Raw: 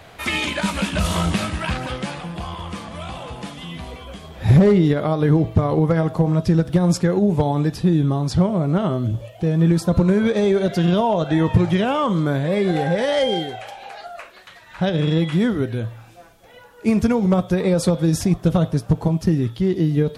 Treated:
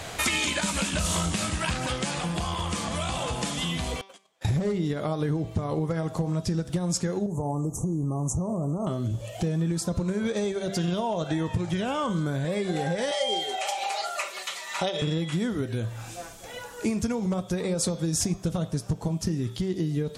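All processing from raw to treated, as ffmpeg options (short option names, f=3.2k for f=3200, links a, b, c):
-filter_complex "[0:a]asettb=1/sr,asplit=3[a][b][c];[a]atrim=end=4.014[d];[b]atrim=start=4.01:end=4.45,asetpts=PTS-STARTPTS,afade=t=in:d=0.004:c=qsin,afade=t=out:st=0.436:d=0.004:c=qsin,highpass=440,agate=range=-35dB:threshold=-38dB:ratio=16:release=100:detection=peak,acompressor=threshold=-52dB:ratio=2.5:attack=3.2:release=140:knee=1:detection=peak[e];[c]atrim=start=4.446[f];[d][e]acrossfade=d=0.004:c1=hsin:c2=qsin[g];[g][f]acrossfade=d=0.004:c1=qsin:c2=hsin,asettb=1/sr,asplit=3[h][i][j];[h]atrim=end=7.264[k];[i]atrim=start=7.26:end=8.87,asetpts=PTS-STARTPTS,afade=t=in:d=0.004:c=qsin,afade=t=out:st=1.606:d=0.004:c=qsin,acompressor=threshold=-18dB:ratio=6:attack=3.2:release=140:knee=1:detection=peak,aeval=exprs='0.2*(abs(mod(val(0)/0.2+3,4)-2)-1)':c=same,asuperstop=centerf=2800:order=20:qfactor=0.57[l];[j]atrim=start=8.866[m];[k][l]acrossfade=d=0.004:c1=hsin:c2=qsin[n];[n][m]acrossfade=d=0.004:c1=qsin:c2=hsin,asettb=1/sr,asplit=3[o][p][q];[o]atrim=end=11.734[r];[p]atrim=start=11.73:end=12.45,asetpts=PTS-STARTPTS,afade=t=in:d=0.004:c=qsin,afade=t=out:st=0.716:d=0.004:c=qsin,aeval=exprs='val(0)+0.0126*sin(2*PI*1500*n/s)':c=same,equalizer=f=63:w=0.85:g=9[s];[q]atrim=start=12.446[t];[r][s]acrossfade=d=0.004:c1=hsin:c2=qsin[u];[u][t]acrossfade=d=0.004:c1=qsin:c2=hsin,asettb=1/sr,asplit=3[v][w][x];[v]atrim=end=13.114[y];[w]atrim=start=13.11:end=15.02,asetpts=PTS-STARTPTS,afade=t=in:d=0.004:c=qsin,afade=t=out:st=1.906:d=0.004:c=qsin,highpass=470,bandreject=f=1.6k:w=5.8,aecho=1:1:5.1:0.98,atrim=end_sample=84231[z];[x]atrim=start=15.016[aa];[y][z]acrossfade=d=0.004:c1=hsin:c2=qsin[ab];[ab][aa]acrossfade=d=0.004:c1=qsin:c2=hsin,acompressor=threshold=-32dB:ratio=5,equalizer=f=7.4k:w=0.92:g=12.5,bandreject=f=193.9:t=h:w=4,bandreject=f=387.8:t=h:w=4,bandreject=f=581.7:t=h:w=4,bandreject=f=775.6:t=h:w=4,bandreject=f=969.5:t=h:w=4,bandreject=f=1.1634k:t=h:w=4,bandreject=f=1.3573k:t=h:w=4,bandreject=f=1.5512k:t=h:w=4,bandreject=f=1.7451k:t=h:w=4,bandreject=f=1.939k:t=h:w=4,bandreject=f=2.1329k:t=h:w=4,bandreject=f=2.3268k:t=h:w=4,bandreject=f=2.5207k:t=h:w=4,bandreject=f=2.7146k:t=h:w=4,bandreject=f=2.9085k:t=h:w=4,bandreject=f=3.1024k:t=h:w=4,bandreject=f=3.2963k:t=h:w=4,bandreject=f=3.4902k:t=h:w=4,bandreject=f=3.6841k:t=h:w=4,bandreject=f=3.878k:t=h:w=4,bandreject=f=4.0719k:t=h:w=4,bandreject=f=4.2658k:t=h:w=4,bandreject=f=4.4597k:t=h:w=4,bandreject=f=4.6536k:t=h:w=4,bandreject=f=4.8475k:t=h:w=4,bandreject=f=5.0414k:t=h:w=4,bandreject=f=5.2353k:t=h:w=4,bandreject=f=5.4292k:t=h:w=4,bandreject=f=5.6231k:t=h:w=4,bandreject=f=5.817k:t=h:w=4,bandreject=f=6.0109k:t=h:w=4,bandreject=f=6.2048k:t=h:w=4,bandreject=f=6.3987k:t=h:w=4,bandreject=f=6.5926k:t=h:w=4,volume=5.5dB"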